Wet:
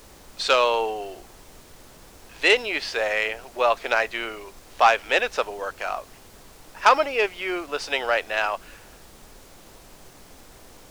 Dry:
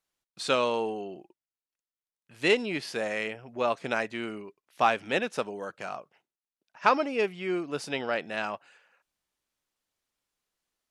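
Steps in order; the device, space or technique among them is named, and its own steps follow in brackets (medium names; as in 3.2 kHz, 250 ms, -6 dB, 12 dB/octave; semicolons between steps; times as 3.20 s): aircraft cabin announcement (band-pass 470–3300 Hz; saturation -14.5 dBFS, distortion -18 dB; brown noise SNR 11 dB); tone controls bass -13 dB, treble +10 dB; trim +9 dB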